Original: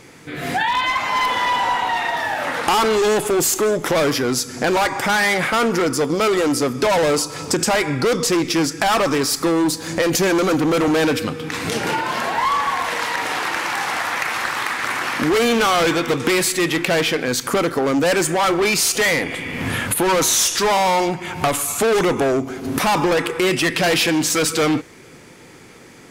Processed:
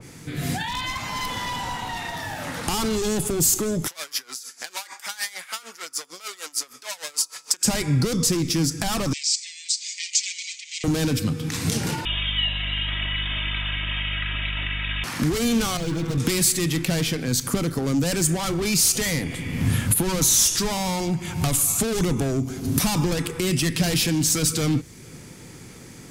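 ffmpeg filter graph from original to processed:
ffmpeg -i in.wav -filter_complex "[0:a]asettb=1/sr,asplit=3[link_01][link_02][link_03];[link_01]atrim=end=3.874[link_04];[link_02]atrim=start=3.87:end=7.65,asetpts=PTS-STARTPTS,afade=type=in:duration=0.004:curve=qsin,afade=type=out:start_time=3.776:duration=0.004:curve=qsin,highpass=1200,aeval=exprs='val(0)*pow(10,-20*(0.5-0.5*cos(2*PI*6.6*n/s))/20)':channel_layout=same[link_05];[link_03]atrim=start=7.646[link_06];[link_04][link_05]acrossfade=duration=0.004:curve1=hsin:curve2=qsin[link_07];[link_07][link_06]acrossfade=duration=0.004:curve1=qsin:curve2=hsin,asettb=1/sr,asplit=3[link_08][link_09][link_10];[link_08]atrim=end=9.134[link_11];[link_09]atrim=start=9.13:end=10.84,asetpts=PTS-STARTPTS,afade=type=in:duration=0.004:curve=qsin,afade=type=out:start_time=1.706:duration=0.004:curve=qsin,asuperpass=centerf=4300:order=20:qfactor=0.68,aecho=1:1:4.9:0.65,atrim=end_sample=75411[link_12];[link_10]atrim=start=10.836[link_13];[link_11][link_12]acrossfade=duration=0.004:curve1=hsin:curve2=qsin[link_14];[link_14][link_13]acrossfade=duration=0.004:curve1=qsin:curve2=hsin,asettb=1/sr,asplit=3[link_15][link_16][link_17];[link_15]atrim=end=12.054[link_18];[link_16]atrim=start=12.05:end=15.04,asetpts=PTS-STARTPTS,afade=type=in:duration=0.004:curve=qsin,afade=type=out:start_time=2.986:duration=0.004:curve=qsin,lowpass=frequency=3300:width_type=q:width=0.5098,lowpass=frequency=3300:width_type=q:width=0.6013,lowpass=frequency=3300:width_type=q:width=0.9,lowpass=frequency=3300:width_type=q:width=2.563,afreqshift=-3900,aecho=1:1:3.1:0.88,atrim=end_sample=131859,aeval=exprs='val(0)+0.0158*(sin(2*PI*50*n/s)+sin(2*PI*2*50*n/s)/2+sin(2*PI*3*50*n/s)/3+sin(2*PI*4*50*n/s)/4+sin(2*PI*5*50*n/s)/5)':channel_layout=same[link_19];[link_17]atrim=start=15.036[link_20];[link_18][link_19]acrossfade=duration=0.004:curve1=hsin:curve2=qsin[link_21];[link_21][link_20]acrossfade=duration=0.004:curve1=qsin:curve2=hsin,asettb=1/sr,asplit=3[link_22][link_23][link_24];[link_22]atrim=end=15.774[link_25];[link_23]atrim=start=15.77:end=16.18,asetpts=PTS-STARTPTS,afade=type=in:duration=0.004:curve=qsin,afade=type=out:start_time=0.406:duration=0.004:curve=qsin,lowpass=frequency=1300:poles=1,asoftclip=type=hard:threshold=-25dB,aecho=1:1:6.2:0.93,atrim=end_sample=18081[link_26];[link_24]atrim=start=16.176[link_27];[link_25][link_26]acrossfade=duration=0.004:curve1=hsin:curve2=qsin[link_28];[link_28][link_27]acrossfade=duration=0.004:curve1=qsin:curve2=hsin,bass=frequency=250:gain=12,treble=frequency=4000:gain=9,acrossover=split=250|3000[link_29][link_30][link_31];[link_30]acompressor=threshold=-38dB:ratio=1.5[link_32];[link_29][link_32][link_31]amix=inputs=3:normalize=0,adynamicequalizer=threshold=0.0224:dfrequency=2700:dqfactor=0.7:tfrequency=2700:tqfactor=0.7:attack=5:release=100:ratio=0.375:range=2:mode=cutabove:tftype=highshelf,volume=-4.5dB" out.wav

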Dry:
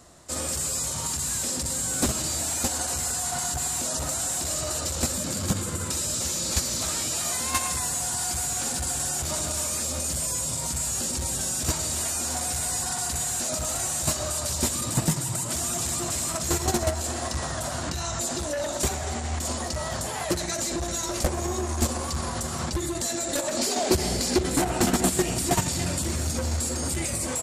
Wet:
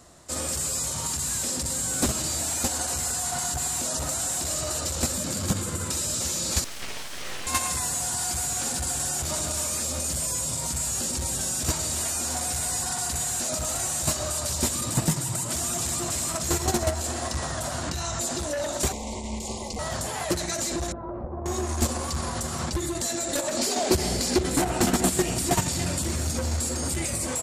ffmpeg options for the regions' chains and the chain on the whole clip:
ffmpeg -i in.wav -filter_complex "[0:a]asettb=1/sr,asplit=3[link_01][link_02][link_03];[link_01]atrim=end=6.644[link_04];[link_02]atrim=start=6.64:end=7.47,asetpts=PTS-STARTPTS,afade=type=in:duration=0.004:curve=qsin,afade=type=out:start_time=0.826:duration=0.004:curve=qsin,highpass=740,lowpass=2500,aeval=exprs='abs(val(0))':channel_layout=same,acontrast=52[link_05];[link_03]atrim=start=7.466[link_06];[link_04][link_05]acrossfade=duration=0.004:curve1=hsin:curve2=qsin[link_07];[link_07][link_06]acrossfade=duration=0.004:curve1=qsin:curve2=hsin,asettb=1/sr,asplit=3[link_08][link_09][link_10];[link_08]atrim=end=18.924[link_11];[link_09]atrim=start=18.92:end=19.79,asetpts=PTS-STARTPTS,afade=type=in:duration=0.004:curve=qsin,afade=type=out:start_time=0.866:duration=0.004:curve=qsin,aeval=exprs='val(0)*sin(2*PI*140*n/s)':channel_layout=same,acrossover=split=8200[link_12][link_13];[link_13]acompressor=threshold=-47dB:ratio=4:attack=1:release=60[link_14];[link_12][link_14]amix=inputs=2:normalize=0,asuperstop=centerf=1500:order=12:qfactor=1.7[link_15];[link_10]atrim=start=19.786[link_16];[link_11][link_15]acrossfade=duration=0.004:curve1=hsin:curve2=qsin[link_17];[link_17][link_16]acrossfade=duration=0.004:curve1=qsin:curve2=hsin,asettb=1/sr,asplit=3[link_18][link_19][link_20];[link_18]atrim=end=20.924[link_21];[link_19]atrim=start=20.92:end=21.46,asetpts=PTS-STARTPTS,afade=type=in:duration=0.004:curve=qsin,afade=type=out:start_time=0.536:duration=0.004:curve=qsin,lowpass=frequency=1100:width=0.5412,lowpass=frequency=1100:width=1.3066,acompressor=threshold=-29dB:ratio=10:attack=3.2:release=140:knee=1:detection=peak[link_22];[link_20]atrim=start=21.456[link_23];[link_21][link_22]acrossfade=duration=0.004:curve1=hsin:curve2=qsin[link_24];[link_24][link_23]acrossfade=duration=0.004:curve1=qsin:curve2=hsin" out.wav

